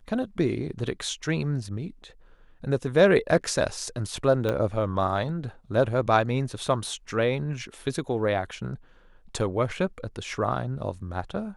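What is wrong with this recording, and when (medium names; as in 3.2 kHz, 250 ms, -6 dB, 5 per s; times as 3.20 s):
4.49 s: pop -15 dBFS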